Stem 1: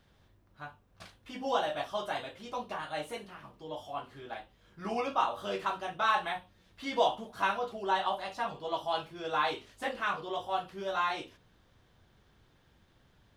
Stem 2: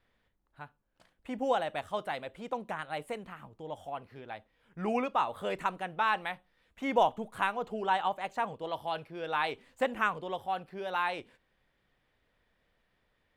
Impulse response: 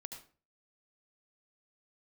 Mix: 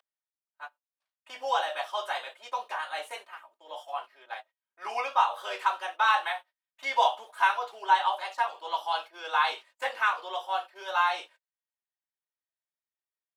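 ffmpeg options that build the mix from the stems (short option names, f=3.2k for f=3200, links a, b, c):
-filter_complex "[0:a]volume=3dB[a];[1:a]bandreject=f=50:t=h:w=6,bandreject=f=100:t=h:w=6,bandreject=f=150:t=h:w=6,bandreject=f=200:t=h:w=6,bandreject=f=250:t=h:w=6,agate=range=-29dB:threshold=-56dB:ratio=16:detection=peak,aecho=1:1:3.2:0.99,adelay=3.9,volume=-3dB,asplit=2[b][c];[c]apad=whole_len=589274[d];[a][d]sidechaingate=range=-41dB:threshold=-45dB:ratio=16:detection=peak[e];[e][b]amix=inputs=2:normalize=0,highpass=f=620:w=0.5412,highpass=f=620:w=1.3066"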